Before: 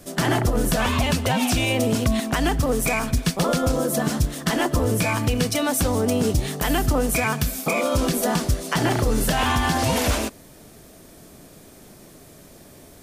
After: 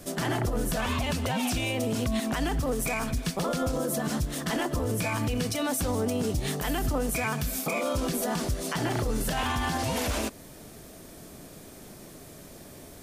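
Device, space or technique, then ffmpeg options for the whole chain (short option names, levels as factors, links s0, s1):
stacked limiters: -af "alimiter=limit=0.141:level=0:latency=1:release=84,alimiter=limit=0.1:level=0:latency=1:release=152"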